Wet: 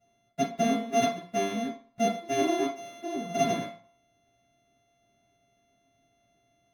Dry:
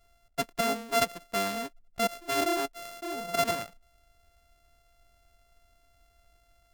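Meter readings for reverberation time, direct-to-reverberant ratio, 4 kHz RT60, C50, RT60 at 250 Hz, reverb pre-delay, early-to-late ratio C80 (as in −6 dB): 0.45 s, −12.0 dB, 0.45 s, 5.5 dB, 0.35 s, 3 ms, 11.5 dB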